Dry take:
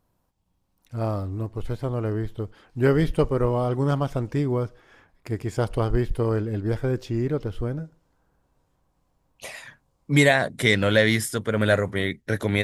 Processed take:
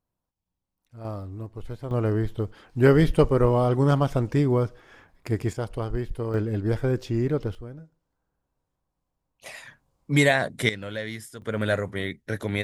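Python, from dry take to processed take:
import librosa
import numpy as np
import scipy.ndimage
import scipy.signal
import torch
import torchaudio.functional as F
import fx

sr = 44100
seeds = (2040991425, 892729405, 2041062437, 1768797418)

y = fx.gain(x, sr, db=fx.steps((0.0, -13.5), (1.05, -6.5), (1.91, 2.5), (5.53, -6.0), (6.34, 0.5), (7.55, -11.5), (9.46, -2.0), (10.69, -14.0), (11.42, -4.5)))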